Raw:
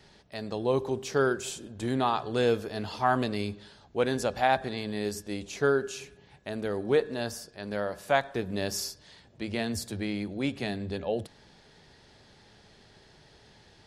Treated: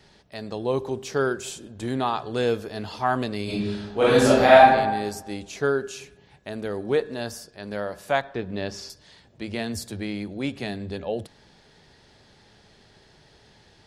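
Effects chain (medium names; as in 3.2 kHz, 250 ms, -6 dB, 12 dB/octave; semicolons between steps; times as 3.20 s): 3.44–4.65 s: reverb throw, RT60 1.1 s, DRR -10 dB; 8.21–8.90 s: low-pass 4.1 kHz 12 dB/octave; trim +1.5 dB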